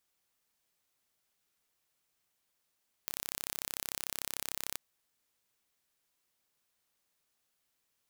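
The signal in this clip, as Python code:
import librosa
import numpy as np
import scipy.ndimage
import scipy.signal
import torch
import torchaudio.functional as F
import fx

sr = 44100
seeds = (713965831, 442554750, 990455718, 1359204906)

y = 10.0 ** (-9.0 / 20.0) * (np.mod(np.arange(round(1.69 * sr)), round(sr / 33.4)) == 0)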